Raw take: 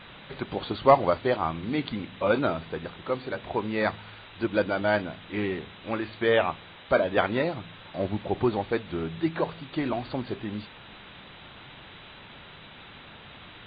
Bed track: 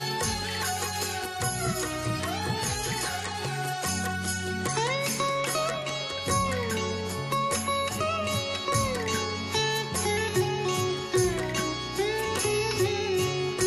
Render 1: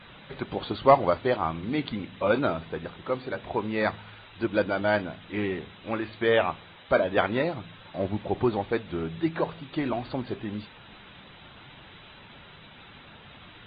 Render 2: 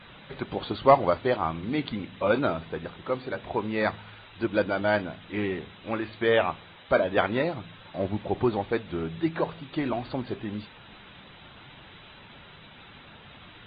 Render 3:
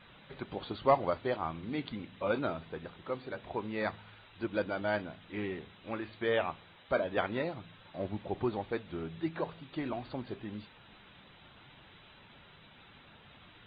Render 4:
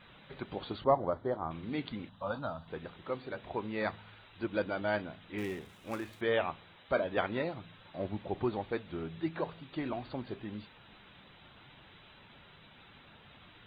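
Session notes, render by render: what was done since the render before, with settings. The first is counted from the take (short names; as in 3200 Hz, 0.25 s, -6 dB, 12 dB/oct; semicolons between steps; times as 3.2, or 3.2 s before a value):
denoiser 6 dB, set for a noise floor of -48 dBFS
nothing audible
gain -8 dB
0.84–1.51 running mean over 17 samples; 2.09–2.68 fixed phaser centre 920 Hz, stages 4; 5.38–6.21 switching dead time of 0.062 ms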